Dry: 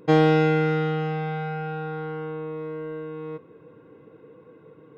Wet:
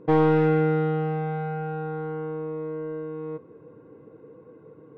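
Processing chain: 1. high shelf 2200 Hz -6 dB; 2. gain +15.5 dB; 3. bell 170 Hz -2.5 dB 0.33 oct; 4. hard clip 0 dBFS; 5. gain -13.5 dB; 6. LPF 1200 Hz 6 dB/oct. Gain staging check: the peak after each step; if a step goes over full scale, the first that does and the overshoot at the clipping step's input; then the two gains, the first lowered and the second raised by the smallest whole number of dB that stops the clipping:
-6.5, +9.0, +8.5, 0.0, -13.5, -13.5 dBFS; step 2, 8.5 dB; step 2 +6.5 dB, step 5 -4.5 dB

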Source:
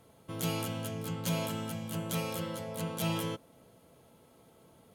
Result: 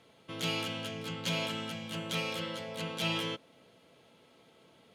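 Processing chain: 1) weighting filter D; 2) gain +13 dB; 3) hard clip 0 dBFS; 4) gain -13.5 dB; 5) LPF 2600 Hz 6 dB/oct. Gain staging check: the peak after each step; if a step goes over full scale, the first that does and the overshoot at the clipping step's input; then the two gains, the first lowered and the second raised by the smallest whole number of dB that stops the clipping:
-15.0, -2.0, -2.0, -15.5, -20.0 dBFS; no overload

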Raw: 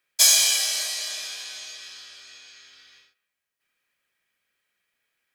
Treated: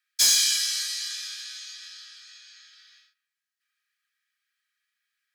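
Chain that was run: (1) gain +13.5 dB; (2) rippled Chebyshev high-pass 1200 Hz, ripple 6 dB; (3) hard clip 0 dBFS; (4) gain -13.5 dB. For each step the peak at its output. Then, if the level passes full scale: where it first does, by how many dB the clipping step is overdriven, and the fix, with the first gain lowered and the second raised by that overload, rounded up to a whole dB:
+10.5, +8.5, 0.0, -13.5 dBFS; step 1, 8.5 dB; step 1 +4.5 dB, step 4 -4.5 dB

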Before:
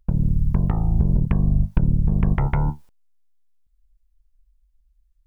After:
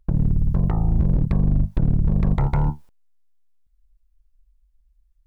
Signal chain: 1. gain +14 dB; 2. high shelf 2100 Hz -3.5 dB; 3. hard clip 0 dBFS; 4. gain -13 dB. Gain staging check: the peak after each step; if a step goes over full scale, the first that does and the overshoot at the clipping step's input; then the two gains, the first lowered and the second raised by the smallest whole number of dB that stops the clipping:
+9.0, +9.0, 0.0, -13.0 dBFS; step 1, 9.0 dB; step 1 +5 dB, step 4 -4 dB

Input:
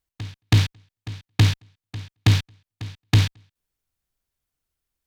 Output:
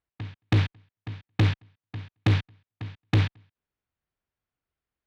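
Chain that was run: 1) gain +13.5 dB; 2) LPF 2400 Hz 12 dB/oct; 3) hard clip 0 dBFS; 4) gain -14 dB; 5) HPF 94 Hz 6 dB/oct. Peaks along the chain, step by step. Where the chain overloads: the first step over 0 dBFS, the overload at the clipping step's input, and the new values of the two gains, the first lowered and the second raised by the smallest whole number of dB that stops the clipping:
+5.5, +5.5, 0.0, -14.0, -10.5 dBFS; step 1, 5.5 dB; step 1 +7.5 dB, step 4 -8 dB

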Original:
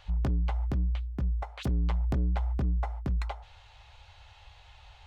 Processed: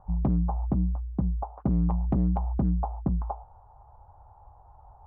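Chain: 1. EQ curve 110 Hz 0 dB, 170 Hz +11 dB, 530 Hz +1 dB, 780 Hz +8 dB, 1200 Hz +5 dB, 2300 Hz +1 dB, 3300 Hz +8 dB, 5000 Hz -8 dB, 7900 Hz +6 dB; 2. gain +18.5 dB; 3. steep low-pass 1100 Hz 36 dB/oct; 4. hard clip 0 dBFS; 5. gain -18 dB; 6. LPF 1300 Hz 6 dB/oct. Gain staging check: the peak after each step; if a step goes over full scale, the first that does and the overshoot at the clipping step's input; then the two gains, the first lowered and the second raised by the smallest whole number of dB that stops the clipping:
-15.0, +3.5, +4.0, 0.0, -18.0, -18.0 dBFS; step 2, 4.0 dB; step 2 +14.5 dB, step 5 -14 dB

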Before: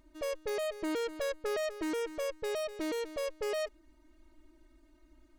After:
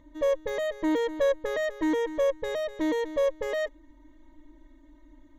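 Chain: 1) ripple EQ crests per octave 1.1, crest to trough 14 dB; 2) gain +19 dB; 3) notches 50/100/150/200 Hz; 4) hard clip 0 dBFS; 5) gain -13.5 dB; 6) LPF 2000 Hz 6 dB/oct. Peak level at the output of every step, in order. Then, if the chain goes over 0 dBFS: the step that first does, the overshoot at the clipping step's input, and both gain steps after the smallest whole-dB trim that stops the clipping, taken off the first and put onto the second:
-20.5, -1.5, -1.5, -1.5, -15.0, -15.5 dBFS; no overload

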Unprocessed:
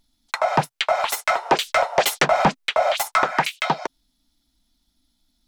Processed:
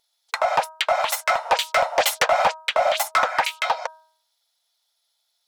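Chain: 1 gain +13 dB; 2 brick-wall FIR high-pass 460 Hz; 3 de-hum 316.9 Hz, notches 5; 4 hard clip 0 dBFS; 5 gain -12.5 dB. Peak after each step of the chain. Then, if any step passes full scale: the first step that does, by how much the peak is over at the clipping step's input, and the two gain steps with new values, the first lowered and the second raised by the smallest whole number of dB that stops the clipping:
+3.5, +6.5, +6.5, 0.0, -12.5 dBFS; step 1, 6.5 dB; step 1 +6 dB, step 5 -5.5 dB

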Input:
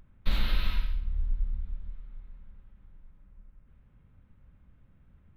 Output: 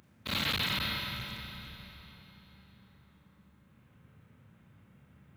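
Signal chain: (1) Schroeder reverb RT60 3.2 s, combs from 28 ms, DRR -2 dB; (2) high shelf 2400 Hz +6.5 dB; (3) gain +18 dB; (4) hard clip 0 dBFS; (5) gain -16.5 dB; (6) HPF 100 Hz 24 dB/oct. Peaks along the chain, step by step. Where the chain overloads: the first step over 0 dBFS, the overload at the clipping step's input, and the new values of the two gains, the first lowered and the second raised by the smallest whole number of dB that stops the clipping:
-10.5, -10.0, +8.0, 0.0, -16.5, -17.0 dBFS; step 3, 8.0 dB; step 3 +10 dB, step 5 -8.5 dB

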